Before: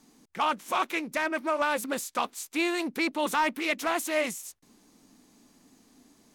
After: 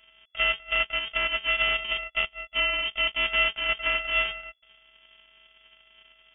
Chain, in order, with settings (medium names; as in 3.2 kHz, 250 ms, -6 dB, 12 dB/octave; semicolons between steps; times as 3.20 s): sorted samples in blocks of 64 samples; 1.75–3.24 s: band-stop 1.8 kHz, Q 8.8; frequency inversion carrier 3.4 kHz; trim +2.5 dB